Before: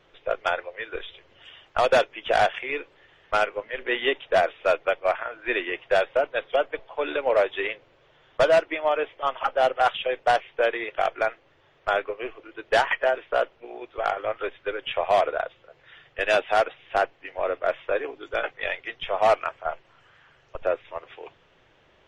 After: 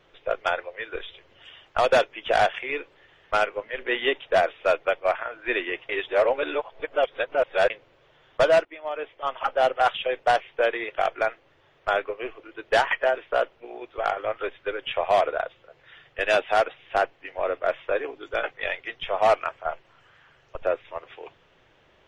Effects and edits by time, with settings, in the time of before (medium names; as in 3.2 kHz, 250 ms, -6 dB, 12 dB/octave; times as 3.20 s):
5.89–7.70 s: reverse
8.65–9.53 s: fade in, from -16.5 dB